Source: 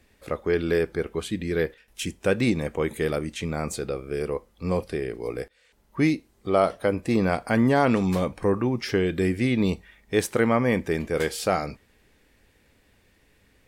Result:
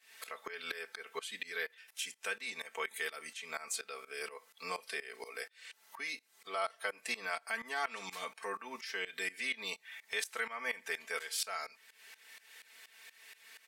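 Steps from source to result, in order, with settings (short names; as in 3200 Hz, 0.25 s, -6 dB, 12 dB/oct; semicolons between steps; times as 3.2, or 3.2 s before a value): HPF 1400 Hz 12 dB/oct; comb 4.5 ms, depth 96%; compressor 2.5:1, threshold -51 dBFS, peak gain reduction 18.5 dB; tremolo saw up 4.2 Hz, depth 90%; gain +11.5 dB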